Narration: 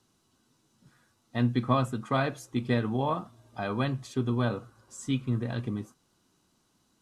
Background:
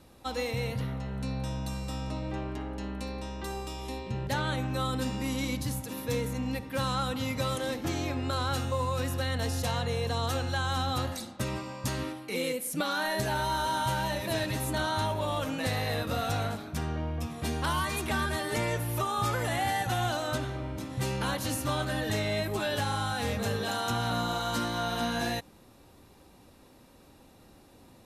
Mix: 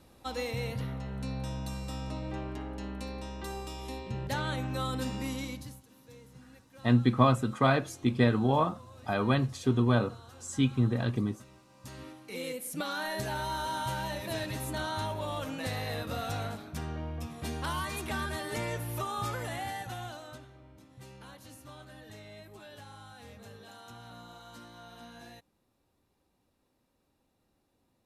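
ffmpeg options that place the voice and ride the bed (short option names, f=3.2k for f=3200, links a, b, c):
-filter_complex "[0:a]adelay=5500,volume=2.5dB[a];[1:a]volume=15.5dB,afade=t=out:st=5.22:d=0.61:silence=0.1,afade=t=in:st=11.67:d=0.99:silence=0.125893,afade=t=out:st=19.13:d=1.35:silence=0.188365[b];[a][b]amix=inputs=2:normalize=0"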